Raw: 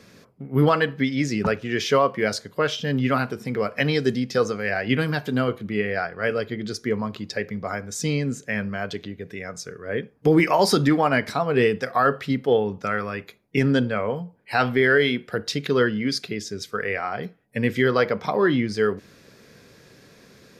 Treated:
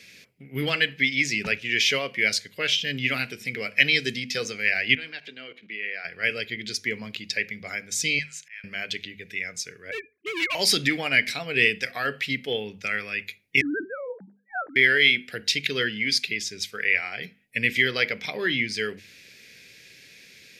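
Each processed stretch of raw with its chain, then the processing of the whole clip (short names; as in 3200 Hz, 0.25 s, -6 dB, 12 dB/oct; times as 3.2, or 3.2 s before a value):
4.95–6.05 level quantiser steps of 16 dB + BPF 300–4100 Hz
8.19–8.64 HPF 900 Hz 24 dB/oct + high shelf 11000 Hz -9 dB + auto swell 0.499 s
9.91–10.55 sine-wave speech + hard clip -23 dBFS + bell 1100 Hz +11.5 dB 0.26 oct
13.61–14.76 sine-wave speech + steep low-pass 1600 Hz 72 dB/oct
whole clip: resonant high shelf 1600 Hz +12.5 dB, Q 3; notches 50/100/150/200/250 Hz; gain -9 dB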